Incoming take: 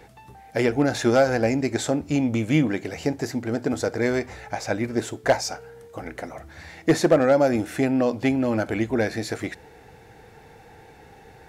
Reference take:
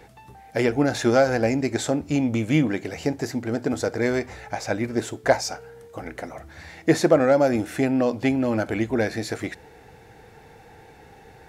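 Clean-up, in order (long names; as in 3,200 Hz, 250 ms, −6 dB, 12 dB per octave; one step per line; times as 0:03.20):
clipped peaks rebuilt −9.5 dBFS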